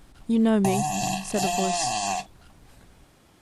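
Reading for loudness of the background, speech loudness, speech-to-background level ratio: -27.5 LUFS, -26.0 LUFS, 1.5 dB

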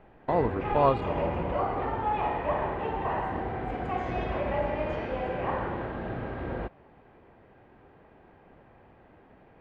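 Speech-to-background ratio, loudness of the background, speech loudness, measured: 3.0 dB, -31.5 LUFS, -28.5 LUFS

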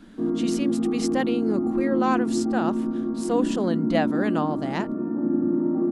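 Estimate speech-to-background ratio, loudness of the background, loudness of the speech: -3.0 dB, -25.5 LUFS, -28.5 LUFS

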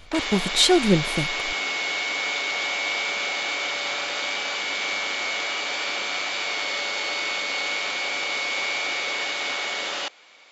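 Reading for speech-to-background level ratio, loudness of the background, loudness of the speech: 4.0 dB, -25.0 LUFS, -21.0 LUFS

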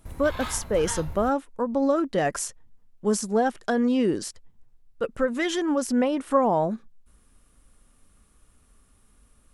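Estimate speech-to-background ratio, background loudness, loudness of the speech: 12.0 dB, -37.5 LUFS, -25.5 LUFS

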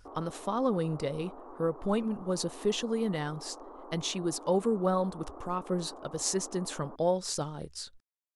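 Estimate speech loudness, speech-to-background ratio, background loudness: -32.0 LUFS, 16.0 dB, -48.0 LUFS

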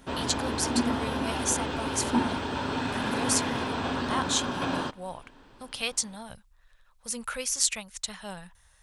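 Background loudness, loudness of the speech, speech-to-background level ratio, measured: -30.0 LUFS, -31.0 LUFS, -1.0 dB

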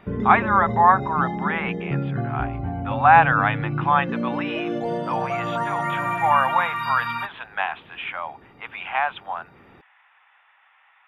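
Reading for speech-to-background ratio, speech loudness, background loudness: 5.0 dB, -22.0 LUFS, -27.0 LUFS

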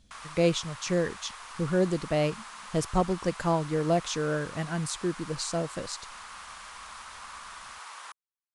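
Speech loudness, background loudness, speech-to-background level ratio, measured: -29.5 LUFS, -43.0 LUFS, 13.5 dB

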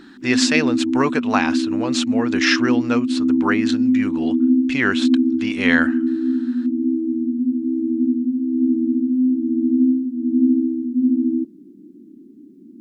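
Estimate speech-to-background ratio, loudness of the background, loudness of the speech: -3.0 dB, -19.5 LUFS, -22.5 LUFS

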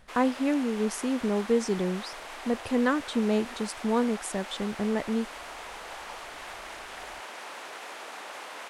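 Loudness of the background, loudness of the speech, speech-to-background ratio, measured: -40.5 LUFS, -29.0 LUFS, 11.5 dB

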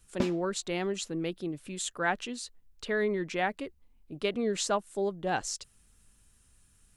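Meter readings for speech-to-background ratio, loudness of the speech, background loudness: 4.0 dB, -32.5 LUFS, -36.5 LUFS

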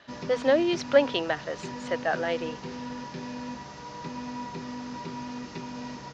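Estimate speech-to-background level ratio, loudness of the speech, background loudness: 11.5 dB, -26.5 LUFS, -38.0 LUFS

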